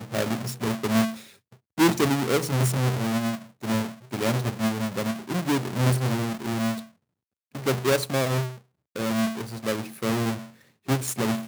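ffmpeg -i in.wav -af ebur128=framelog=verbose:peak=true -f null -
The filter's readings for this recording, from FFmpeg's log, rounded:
Integrated loudness:
  I:         -26.2 LUFS
  Threshold: -36.6 LUFS
Loudness range:
  LRA:         3.0 LU
  Threshold: -46.6 LUFS
  LRA low:   -28.0 LUFS
  LRA high:  -25.0 LUFS
True peak:
  Peak:       -7.0 dBFS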